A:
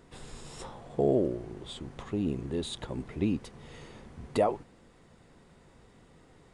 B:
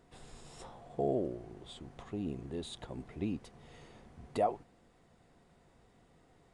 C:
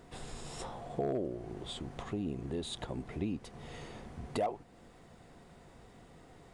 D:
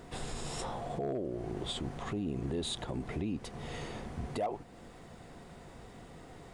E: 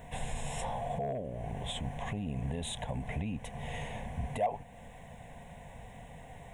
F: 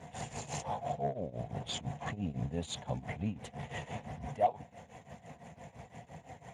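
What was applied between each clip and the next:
peaking EQ 710 Hz +7.5 dB 0.21 oct; trim -7.5 dB
overload inside the chain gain 24 dB; compression 2:1, threshold -47 dBFS, peak gain reduction 11 dB; trim +8.5 dB
peak limiter -33 dBFS, peak gain reduction 9.5 dB; trim +5.5 dB
static phaser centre 1.3 kHz, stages 6; trim +4.5 dB
tremolo triangle 5.9 Hz, depth 90%; trim +3.5 dB; Speex 15 kbps 32 kHz

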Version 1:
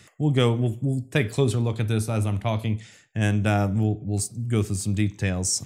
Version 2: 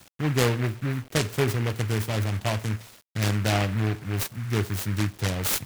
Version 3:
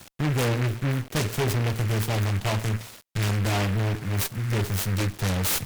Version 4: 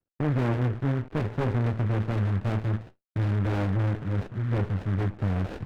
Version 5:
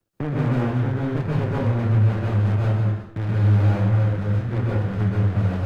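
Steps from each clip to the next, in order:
dynamic bell 200 Hz, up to -5 dB, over -36 dBFS, Q 0.88; bit crusher 8-bit; delay time shaken by noise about 1.6 kHz, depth 0.16 ms
valve stage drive 29 dB, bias 0.55; trim +8 dB
gate -39 dBFS, range -38 dB; low-pass 1.9 kHz 24 dB/octave; sliding maximum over 33 samples
flange 0.56 Hz, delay 8.5 ms, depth 7.3 ms, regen +70%; plate-style reverb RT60 0.66 s, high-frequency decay 0.8×, pre-delay 115 ms, DRR -4.5 dB; three bands compressed up and down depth 40%; trim +2 dB

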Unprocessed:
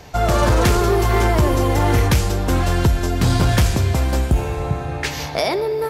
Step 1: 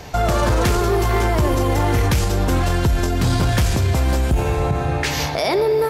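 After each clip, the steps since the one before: peak limiter -15.5 dBFS, peak gain reduction 7.5 dB; trim +5 dB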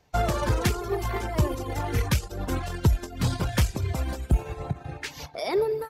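reverb removal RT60 1.2 s; upward expansion 2.5:1, over -33 dBFS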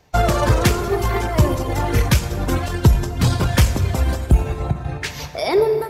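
plate-style reverb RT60 2.3 s, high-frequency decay 0.55×, DRR 9 dB; trim +8 dB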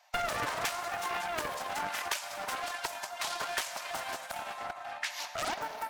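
steep high-pass 600 Hz 72 dB/octave; compression 2:1, threshold -30 dBFS, peak gain reduction 8 dB; loudspeaker Doppler distortion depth 0.46 ms; trim -4 dB

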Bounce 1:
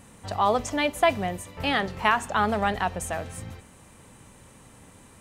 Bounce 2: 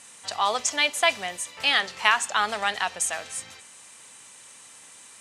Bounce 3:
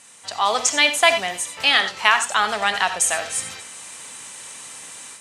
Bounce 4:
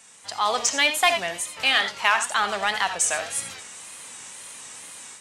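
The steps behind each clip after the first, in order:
frequency weighting ITU-R 468; trim -1 dB
level rider gain up to 10 dB; gated-style reverb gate 110 ms rising, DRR 9.5 dB
in parallel at -4.5 dB: hard clipper -12.5 dBFS, distortion -11 dB; on the sum: wow and flutter 100 cents; trim -7 dB

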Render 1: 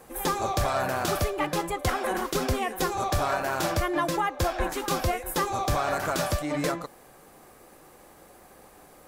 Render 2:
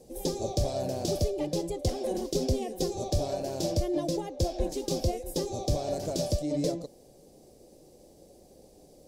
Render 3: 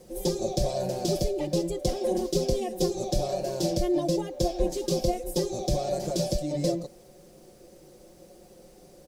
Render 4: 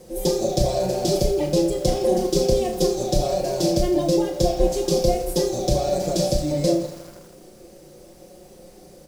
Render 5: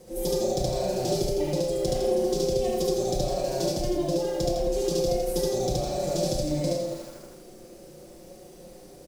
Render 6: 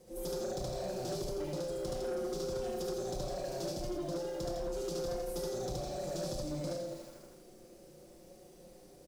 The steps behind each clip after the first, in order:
FFT filter 580 Hz 0 dB, 1.3 kHz -30 dB, 5.1 kHz +1 dB, 14 kHz -12 dB
comb 5.6 ms, depth 89%; added noise pink -64 dBFS
on a send: flutter echo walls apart 5.6 m, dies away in 0.28 s; on the sum: bit-crushed delay 81 ms, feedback 80%, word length 7-bit, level -14.5 dB; trim +5 dB
compression, threshold -21 dBFS, peak gain reduction 8.5 dB; loudspeakers at several distances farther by 25 m 0 dB, 54 m -7 dB; trim -4.5 dB
saturation -22 dBFS, distortion -15 dB; trim -9 dB

